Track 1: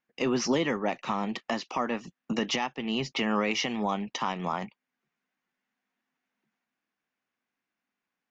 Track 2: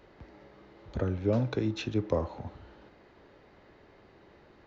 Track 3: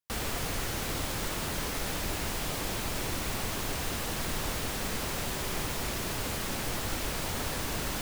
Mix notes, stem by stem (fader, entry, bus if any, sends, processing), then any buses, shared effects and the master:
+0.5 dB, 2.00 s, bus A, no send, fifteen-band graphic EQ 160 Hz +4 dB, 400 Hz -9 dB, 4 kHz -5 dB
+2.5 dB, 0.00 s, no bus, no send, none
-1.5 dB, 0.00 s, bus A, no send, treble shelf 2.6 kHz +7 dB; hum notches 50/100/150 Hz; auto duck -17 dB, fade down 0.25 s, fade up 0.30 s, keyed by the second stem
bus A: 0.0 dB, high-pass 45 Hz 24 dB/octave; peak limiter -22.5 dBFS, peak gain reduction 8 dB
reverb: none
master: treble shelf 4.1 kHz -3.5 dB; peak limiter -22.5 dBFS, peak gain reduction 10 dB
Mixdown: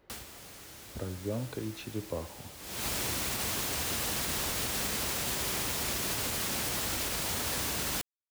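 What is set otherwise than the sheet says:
stem 1: muted; stem 2 +2.5 dB -> -7.5 dB; master: missing treble shelf 4.1 kHz -3.5 dB

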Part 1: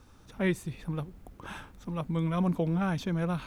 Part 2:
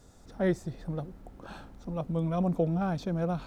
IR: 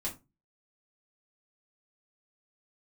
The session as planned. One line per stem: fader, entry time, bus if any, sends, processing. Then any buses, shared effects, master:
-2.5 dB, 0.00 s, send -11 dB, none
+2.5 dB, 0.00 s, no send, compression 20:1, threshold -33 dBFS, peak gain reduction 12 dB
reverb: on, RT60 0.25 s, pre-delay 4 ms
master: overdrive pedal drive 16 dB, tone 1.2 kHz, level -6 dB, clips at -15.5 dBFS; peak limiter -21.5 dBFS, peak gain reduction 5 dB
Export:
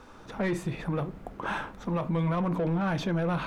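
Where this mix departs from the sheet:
stem 1 -2.5 dB -> +3.5 dB; stem 2 +2.5 dB -> -7.0 dB

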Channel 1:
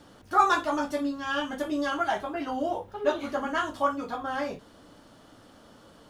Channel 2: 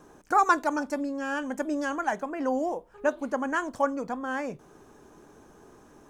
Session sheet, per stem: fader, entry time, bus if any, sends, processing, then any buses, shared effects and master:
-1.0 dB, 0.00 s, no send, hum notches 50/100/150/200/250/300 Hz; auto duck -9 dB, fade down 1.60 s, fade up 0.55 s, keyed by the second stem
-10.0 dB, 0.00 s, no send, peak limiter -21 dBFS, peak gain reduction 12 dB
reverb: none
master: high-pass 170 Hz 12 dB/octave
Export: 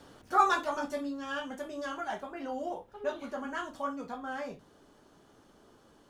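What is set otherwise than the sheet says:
stem 2: polarity flipped; master: missing high-pass 170 Hz 12 dB/octave

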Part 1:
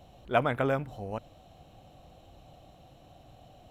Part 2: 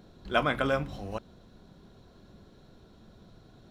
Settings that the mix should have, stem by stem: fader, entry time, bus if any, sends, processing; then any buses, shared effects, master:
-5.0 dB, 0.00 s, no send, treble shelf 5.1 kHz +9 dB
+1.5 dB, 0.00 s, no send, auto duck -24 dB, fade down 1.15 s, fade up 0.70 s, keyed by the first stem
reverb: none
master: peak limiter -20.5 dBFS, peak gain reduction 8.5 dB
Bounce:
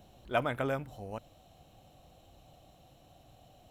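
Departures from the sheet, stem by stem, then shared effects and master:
stem 2 +1.5 dB -> -10.0 dB; master: missing peak limiter -20.5 dBFS, peak gain reduction 8.5 dB

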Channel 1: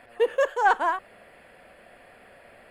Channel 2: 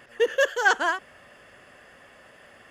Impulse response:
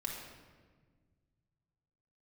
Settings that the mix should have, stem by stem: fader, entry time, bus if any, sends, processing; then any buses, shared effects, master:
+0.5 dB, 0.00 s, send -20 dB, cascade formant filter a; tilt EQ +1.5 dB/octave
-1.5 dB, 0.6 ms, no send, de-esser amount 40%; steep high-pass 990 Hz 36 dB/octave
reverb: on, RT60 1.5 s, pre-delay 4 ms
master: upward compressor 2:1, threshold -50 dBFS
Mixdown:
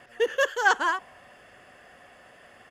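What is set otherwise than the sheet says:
stem 2: missing steep high-pass 990 Hz 36 dB/octave; master: missing upward compressor 2:1, threshold -50 dBFS

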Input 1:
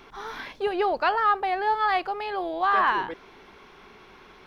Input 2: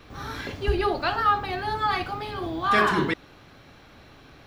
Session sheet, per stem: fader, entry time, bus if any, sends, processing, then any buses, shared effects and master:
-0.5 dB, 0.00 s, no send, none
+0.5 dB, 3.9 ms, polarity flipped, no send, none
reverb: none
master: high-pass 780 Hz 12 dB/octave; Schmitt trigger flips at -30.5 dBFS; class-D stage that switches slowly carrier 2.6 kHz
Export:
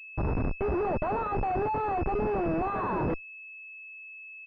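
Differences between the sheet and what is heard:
stem 2 +0.5 dB -> -8.0 dB; master: missing high-pass 780 Hz 12 dB/octave

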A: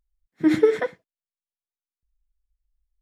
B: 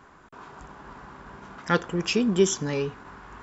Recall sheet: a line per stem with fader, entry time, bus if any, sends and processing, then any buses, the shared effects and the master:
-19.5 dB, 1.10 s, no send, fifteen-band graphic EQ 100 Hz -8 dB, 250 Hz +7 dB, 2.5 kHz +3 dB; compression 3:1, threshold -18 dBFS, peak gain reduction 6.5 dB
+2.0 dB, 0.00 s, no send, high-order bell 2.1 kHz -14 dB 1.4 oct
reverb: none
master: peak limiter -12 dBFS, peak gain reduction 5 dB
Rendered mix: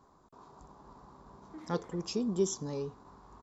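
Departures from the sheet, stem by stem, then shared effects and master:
stem A -19.5 dB -> -28.5 dB; stem B +2.0 dB -> -9.0 dB

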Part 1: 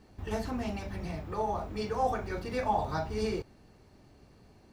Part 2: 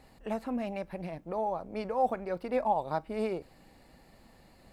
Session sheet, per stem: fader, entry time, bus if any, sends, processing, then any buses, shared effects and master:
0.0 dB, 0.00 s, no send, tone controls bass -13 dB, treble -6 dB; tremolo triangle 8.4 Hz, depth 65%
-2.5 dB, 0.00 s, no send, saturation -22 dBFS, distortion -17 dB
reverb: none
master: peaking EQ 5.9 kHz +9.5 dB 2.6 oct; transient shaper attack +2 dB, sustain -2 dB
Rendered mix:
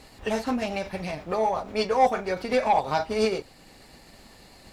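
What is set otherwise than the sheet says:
stem 1 0.0 dB -> +6.0 dB; stem 2 -2.5 dB -> +5.0 dB

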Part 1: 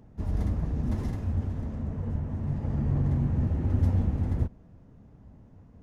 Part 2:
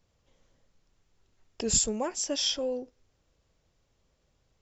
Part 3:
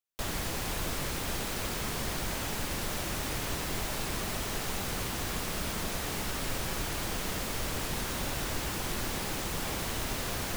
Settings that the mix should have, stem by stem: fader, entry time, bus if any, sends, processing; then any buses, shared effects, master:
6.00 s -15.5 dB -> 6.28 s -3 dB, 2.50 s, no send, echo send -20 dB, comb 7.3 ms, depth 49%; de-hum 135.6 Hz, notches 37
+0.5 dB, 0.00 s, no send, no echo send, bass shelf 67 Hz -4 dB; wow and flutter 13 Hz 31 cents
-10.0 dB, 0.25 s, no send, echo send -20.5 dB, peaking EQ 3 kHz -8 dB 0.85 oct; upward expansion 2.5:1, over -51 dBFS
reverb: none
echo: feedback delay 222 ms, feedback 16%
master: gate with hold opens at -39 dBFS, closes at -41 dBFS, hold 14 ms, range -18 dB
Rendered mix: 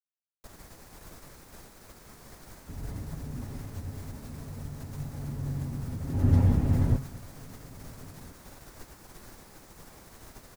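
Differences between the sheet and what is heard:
stem 1 -15.5 dB -> -8.5 dB; stem 2: muted; master: missing gate with hold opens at -39 dBFS, closes at -41 dBFS, hold 14 ms, range -18 dB

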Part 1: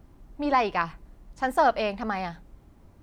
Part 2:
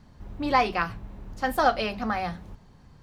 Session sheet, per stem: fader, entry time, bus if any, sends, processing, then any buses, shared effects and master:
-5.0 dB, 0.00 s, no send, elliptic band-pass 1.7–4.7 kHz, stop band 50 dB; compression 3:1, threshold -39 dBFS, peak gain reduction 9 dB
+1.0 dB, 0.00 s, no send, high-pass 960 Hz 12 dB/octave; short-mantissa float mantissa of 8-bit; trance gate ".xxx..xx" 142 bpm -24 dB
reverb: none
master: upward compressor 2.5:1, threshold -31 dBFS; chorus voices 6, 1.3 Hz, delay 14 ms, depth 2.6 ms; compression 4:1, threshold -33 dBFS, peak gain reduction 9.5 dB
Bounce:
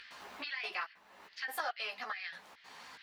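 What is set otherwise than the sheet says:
stem 1 -5.0 dB -> +1.5 dB; stem 2 +1.0 dB -> -5.0 dB

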